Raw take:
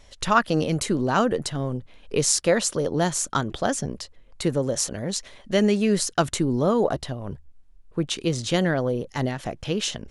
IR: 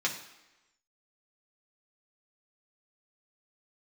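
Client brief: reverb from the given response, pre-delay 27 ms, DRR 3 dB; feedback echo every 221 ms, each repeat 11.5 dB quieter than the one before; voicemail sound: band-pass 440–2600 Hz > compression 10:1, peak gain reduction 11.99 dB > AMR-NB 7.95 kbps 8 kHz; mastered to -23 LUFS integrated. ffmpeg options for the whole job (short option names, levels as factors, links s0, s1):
-filter_complex "[0:a]aecho=1:1:221|442|663:0.266|0.0718|0.0194,asplit=2[s0][s1];[1:a]atrim=start_sample=2205,adelay=27[s2];[s1][s2]afir=irnorm=-1:irlink=0,volume=0.299[s3];[s0][s3]amix=inputs=2:normalize=0,highpass=440,lowpass=2600,acompressor=threshold=0.0631:ratio=10,volume=2.82" -ar 8000 -c:a libopencore_amrnb -b:a 7950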